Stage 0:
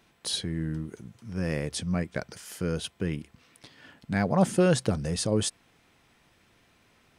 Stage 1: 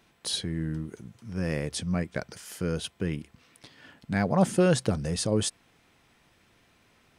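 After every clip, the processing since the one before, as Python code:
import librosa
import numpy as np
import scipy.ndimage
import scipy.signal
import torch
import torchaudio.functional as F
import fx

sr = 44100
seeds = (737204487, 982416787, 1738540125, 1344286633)

y = x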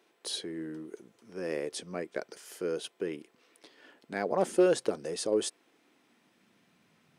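y = np.clip(x, -10.0 ** (-14.0 / 20.0), 10.0 ** (-14.0 / 20.0))
y = fx.filter_sweep_highpass(y, sr, from_hz=380.0, to_hz=160.0, start_s=5.39, end_s=6.96, q=2.4)
y = y * 10.0 ** (-5.5 / 20.0)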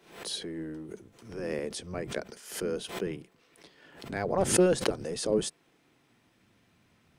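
y = fx.octave_divider(x, sr, octaves=1, level_db=-2.0)
y = fx.pre_swell(y, sr, db_per_s=100.0)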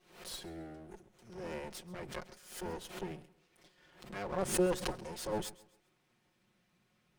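y = fx.lower_of_two(x, sr, delay_ms=5.5)
y = fx.echo_feedback(y, sr, ms=133, feedback_pct=33, wet_db=-20)
y = y * 10.0 ** (-7.0 / 20.0)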